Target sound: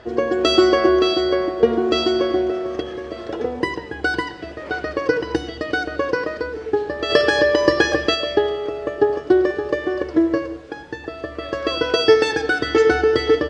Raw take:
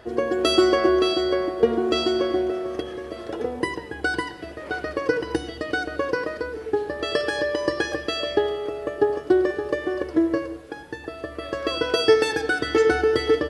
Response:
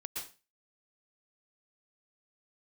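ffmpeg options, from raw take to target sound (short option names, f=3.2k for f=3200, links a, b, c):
-filter_complex "[0:a]lowpass=f=7k:w=0.5412,lowpass=f=7k:w=1.3066,asplit=3[a][b][c];[a]afade=t=out:st=7.09:d=0.02[d];[b]acontrast=29,afade=t=in:st=7.09:d=0.02,afade=t=out:st=8.14:d=0.02[e];[c]afade=t=in:st=8.14:d=0.02[f];[d][e][f]amix=inputs=3:normalize=0,volume=3.5dB"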